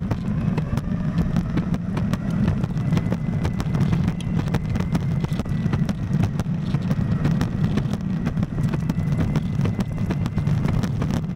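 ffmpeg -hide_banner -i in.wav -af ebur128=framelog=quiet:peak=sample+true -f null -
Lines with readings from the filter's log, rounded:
Integrated loudness:
  I:         -23.4 LUFS
  Threshold: -33.4 LUFS
Loudness range:
  LRA:         0.5 LU
  Threshold: -43.3 LUFS
  LRA low:   -23.6 LUFS
  LRA high:  -23.1 LUFS
Sample peak:
  Peak:       -8.9 dBFS
True peak:
  Peak:       -8.8 dBFS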